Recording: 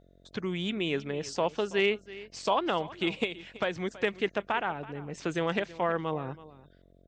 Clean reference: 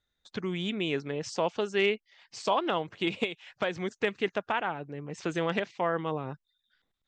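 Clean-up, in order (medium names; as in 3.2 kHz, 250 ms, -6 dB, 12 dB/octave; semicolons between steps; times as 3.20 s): de-hum 45.2 Hz, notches 15; inverse comb 328 ms -18 dB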